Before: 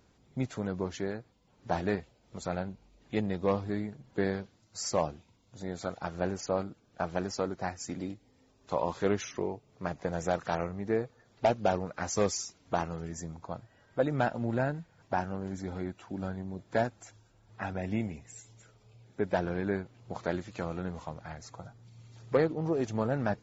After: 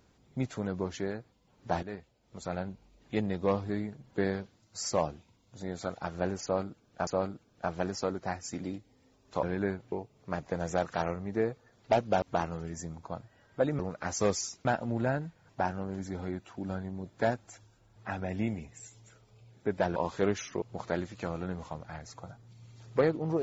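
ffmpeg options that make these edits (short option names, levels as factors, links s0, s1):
-filter_complex "[0:a]asplit=10[s0][s1][s2][s3][s4][s5][s6][s7][s8][s9];[s0]atrim=end=1.83,asetpts=PTS-STARTPTS,afade=t=out:st=1.826:d=0.004:c=hsin:silence=0.223872[s10];[s1]atrim=start=1.83:end=7.072,asetpts=PTS-STARTPTS,afade=t=in:d=0.89:silence=0.223872[s11];[s2]atrim=start=6.428:end=8.792[s12];[s3]atrim=start=19.488:end=19.982[s13];[s4]atrim=start=9.448:end=11.752[s14];[s5]atrim=start=12.608:end=14.182[s15];[s6]atrim=start=11.748:end=12.612[s16];[s7]atrim=start=14.178:end=19.492[s17];[s8]atrim=start=8.788:end=9.452[s18];[s9]atrim=start=19.978[s19];[s10][s11]concat=n=2:v=0:a=1[s20];[s20][s12]acrossfade=d=0.004:c1=hsin:c2=hsin[s21];[s21][s13]acrossfade=d=0.004:c1=hsin:c2=hsin[s22];[s22][s14]acrossfade=d=0.004:c1=hsin:c2=hsin[s23];[s23][s15]acrossfade=d=0.004:c1=hsin:c2=hsin[s24];[s24][s16]acrossfade=d=0.004:c1=hsin:c2=hsin[s25];[s25][s17]acrossfade=d=0.004:c1=hsin:c2=hsin[s26];[s26][s18]acrossfade=d=0.004:c1=hsin:c2=hsin[s27];[s27][s19]acrossfade=d=0.004:c1=hsin:c2=hsin"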